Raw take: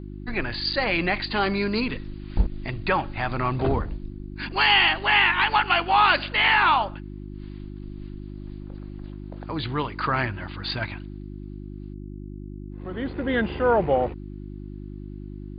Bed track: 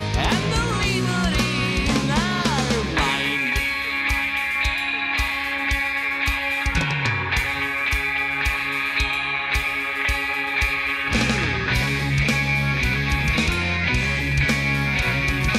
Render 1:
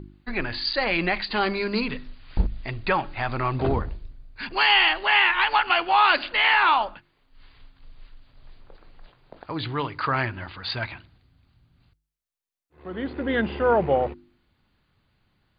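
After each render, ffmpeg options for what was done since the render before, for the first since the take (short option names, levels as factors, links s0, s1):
-af "bandreject=f=50:t=h:w=4,bandreject=f=100:t=h:w=4,bandreject=f=150:t=h:w=4,bandreject=f=200:t=h:w=4,bandreject=f=250:t=h:w=4,bandreject=f=300:t=h:w=4,bandreject=f=350:t=h:w=4"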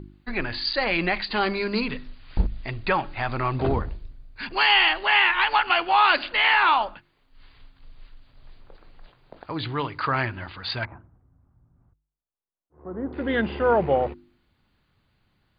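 -filter_complex "[0:a]asettb=1/sr,asplit=3[s0][s1][s2];[s0]atrim=end=10.854[s3];[s1]atrim=start=10.85:end=13.13,asetpts=PTS-STARTPTS,afade=t=in:d=0.004:c=qsin,afade=t=out:st=2.276:d=0.004:c=qsin,lowpass=f=1200:w=0.5412,lowpass=f=1200:w=1.3066[s4];[s2]atrim=start=13.126[s5];[s3][s4]acrossfade=d=0.004:c1=hsin:c2=qsin[s6];[s6][s5]acrossfade=d=0.004:c1=qsin:c2=hsin"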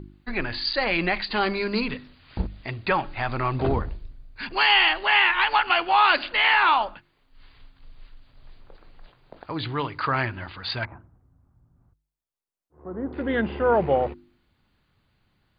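-filter_complex "[0:a]asettb=1/sr,asplit=3[s0][s1][s2];[s0]atrim=end=1.944[s3];[s1]atrim=start=1.94:end=2.91,asetpts=PTS-STARTPTS,afade=t=in:d=0.004:c=qsin,afade=t=out:st=0.966:d=0.004:c=qsin,highpass=68[s4];[s2]atrim=start=2.906[s5];[s3][s4]acrossfade=d=0.004:c1=hsin:c2=qsin[s6];[s6][s5]acrossfade=d=0.004:c1=qsin:c2=hsin,asettb=1/sr,asplit=3[s7][s8][s9];[s7]atrim=end=13.224[s10];[s8]atrim=start=13.22:end=13.74,asetpts=PTS-STARTPTS,afade=t=in:d=0.004:c=qsin,afade=t=out:st=0.516:d=0.004:c=qsin,lowpass=f=2600:p=1[s11];[s9]atrim=start=13.736[s12];[s10][s11]acrossfade=d=0.004:c1=hsin:c2=qsin[s13];[s13][s12]acrossfade=d=0.004:c1=qsin:c2=hsin"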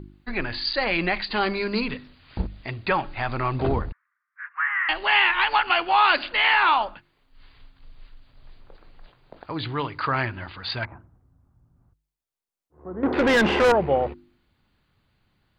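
-filter_complex "[0:a]asettb=1/sr,asplit=3[s0][s1][s2];[s0]atrim=end=3.924[s3];[s1]atrim=start=3.92:end=4.89,asetpts=PTS-STARTPTS,afade=t=in:d=0.004:c=qsin,afade=t=out:st=0.966:d=0.004:c=qsin,asuperpass=centerf=1500:order=8:qfactor=1.7[s4];[s2]atrim=start=4.886[s5];[s3][s4]acrossfade=d=0.004:c1=hsin:c2=qsin[s6];[s6][s5]acrossfade=d=0.004:c1=qsin:c2=hsin,asettb=1/sr,asplit=3[s7][s8][s9];[s7]atrim=end=13.034[s10];[s8]atrim=start=13.03:end=13.72,asetpts=PTS-STARTPTS,afade=t=in:d=0.004:c=qsin,afade=t=out:st=0.686:d=0.004:c=qsin,asplit=2[s11][s12];[s12]highpass=f=720:p=1,volume=22.4,asoftclip=type=tanh:threshold=0.282[s13];[s11][s13]amix=inputs=2:normalize=0,lowpass=f=4000:p=1,volume=0.501[s14];[s9]atrim=start=13.716[s15];[s10][s14]acrossfade=d=0.004:c1=hsin:c2=qsin[s16];[s16][s15]acrossfade=d=0.004:c1=qsin:c2=hsin"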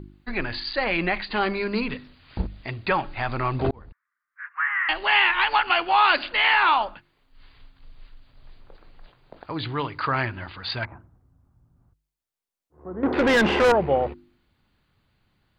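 -filter_complex "[0:a]asettb=1/sr,asplit=3[s0][s1][s2];[s0]atrim=end=0.604[s3];[s1]atrim=start=0.6:end=1.91,asetpts=PTS-STARTPTS,afade=t=in:d=0.004:c=qsin,afade=t=out:st=1.306:d=0.004:c=qsin,lowpass=3700[s4];[s2]atrim=start=1.906[s5];[s3][s4]acrossfade=d=0.004:c1=hsin:c2=qsin[s6];[s6][s5]acrossfade=d=0.004:c1=qsin:c2=hsin,asplit=2[s7][s8];[s7]atrim=end=3.71,asetpts=PTS-STARTPTS,afade=t=out:st=3.706:d=0.004:c=hsin[s9];[s8]atrim=start=3.71,asetpts=PTS-STARTPTS,afade=t=in:d=0.76[s10];[s9][s10]concat=n=2:v=0:a=1"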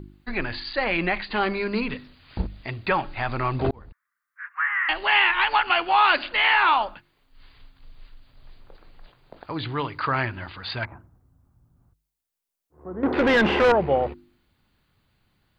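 -filter_complex "[0:a]acrossover=split=4500[s0][s1];[s1]acompressor=threshold=0.002:ratio=4:attack=1:release=60[s2];[s0][s2]amix=inputs=2:normalize=0,highshelf=f=7800:g=7"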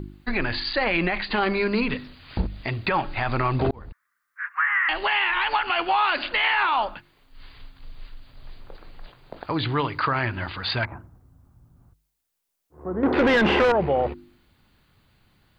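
-filter_complex "[0:a]asplit=2[s0][s1];[s1]acompressor=threshold=0.0355:ratio=6,volume=1[s2];[s0][s2]amix=inputs=2:normalize=0,alimiter=limit=0.211:level=0:latency=1:release=28"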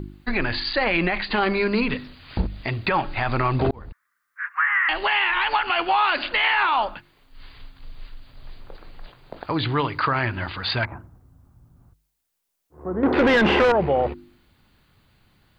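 -af "volume=1.19"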